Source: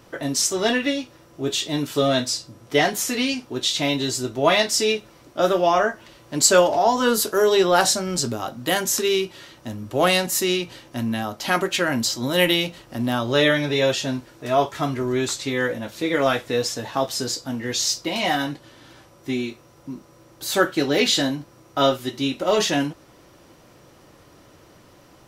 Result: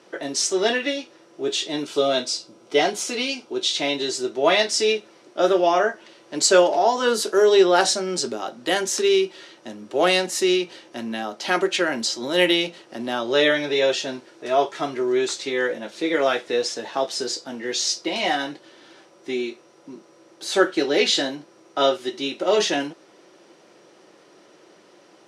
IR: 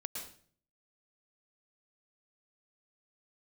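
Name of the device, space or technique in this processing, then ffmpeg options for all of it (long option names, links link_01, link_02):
television speaker: -filter_complex "[0:a]highpass=frequency=210:width=0.5412,highpass=frequency=210:width=1.3066,equalizer=frequency=260:width_type=q:width=4:gain=-8,equalizer=frequency=370:width_type=q:width=4:gain=5,equalizer=frequency=1100:width_type=q:width=4:gain=-4,equalizer=frequency=7400:width_type=q:width=4:gain=-4,lowpass=frequency=8900:width=0.5412,lowpass=frequency=8900:width=1.3066,asettb=1/sr,asplit=3[link_01][link_02][link_03];[link_01]atrim=end=1.854[link_04];[link_02]atrim=start=1.85:end=3.7,asetpts=PTS-STARTPTS,afade=type=in:duration=0.004:curve=qsin,afade=type=out:start_time=1.846:duration=0.004:curve=qsin,bandreject=frequency=1800:width=5.5[link_05];[link_03]atrim=start=3.696[link_06];[link_04][link_05]acrossfade=duration=0.004:curve1=hsin:curve2=qsin[link_07];[link_07][link_06]acrossfade=duration=0.004:curve1=qsin:curve2=hsin"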